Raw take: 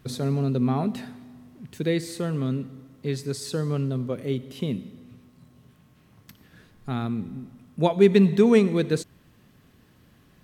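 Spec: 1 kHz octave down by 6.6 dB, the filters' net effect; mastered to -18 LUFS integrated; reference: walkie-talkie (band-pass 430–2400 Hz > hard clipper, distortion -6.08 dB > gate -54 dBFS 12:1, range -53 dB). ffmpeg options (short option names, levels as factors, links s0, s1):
-af "highpass=430,lowpass=2400,equalizer=f=1000:t=o:g=-9,asoftclip=type=hard:threshold=0.0473,agate=range=0.00224:threshold=0.002:ratio=12,volume=7.5"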